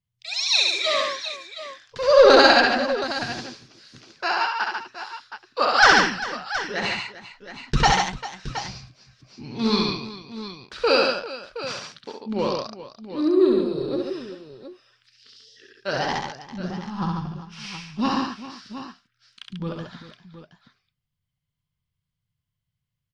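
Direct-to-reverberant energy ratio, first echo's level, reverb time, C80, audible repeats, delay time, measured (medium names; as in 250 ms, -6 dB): no reverb, -3.5 dB, no reverb, no reverb, 4, 66 ms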